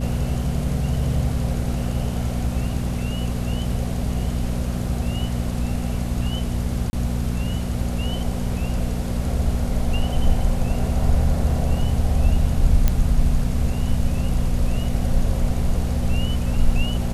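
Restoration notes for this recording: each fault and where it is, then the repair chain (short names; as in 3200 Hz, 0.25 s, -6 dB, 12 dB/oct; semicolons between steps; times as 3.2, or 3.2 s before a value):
hum 60 Hz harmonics 4 -25 dBFS
6.9–6.93 gap 30 ms
12.88 pop -6 dBFS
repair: de-click; de-hum 60 Hz, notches 4; interpolate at 6.9, 30 ms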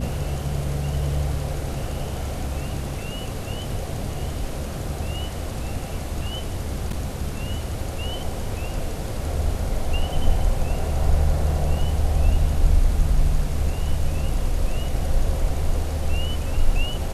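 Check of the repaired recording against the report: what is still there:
none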